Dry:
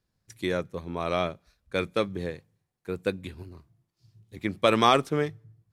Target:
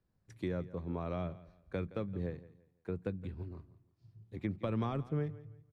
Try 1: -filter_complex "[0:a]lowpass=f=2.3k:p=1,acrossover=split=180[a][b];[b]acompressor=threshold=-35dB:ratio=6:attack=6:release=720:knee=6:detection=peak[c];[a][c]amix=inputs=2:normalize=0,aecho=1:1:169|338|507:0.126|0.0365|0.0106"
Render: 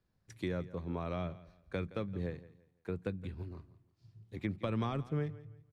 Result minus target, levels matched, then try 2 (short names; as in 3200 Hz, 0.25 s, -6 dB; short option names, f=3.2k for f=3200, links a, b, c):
2000 Hz band +3.5 dB
-filter_complex "[0:a]lowpass=f=1k:p=1,acrossover=split=180[a][b];[b]acompressor=threshold=-35dB:ratio=6:attack=6:release=720:knee=6:detection=peak[c];[a][c]amix=inputs=2:normalize=0,aecho=1:1:169|338|507:0.126|0.0365|0.0106"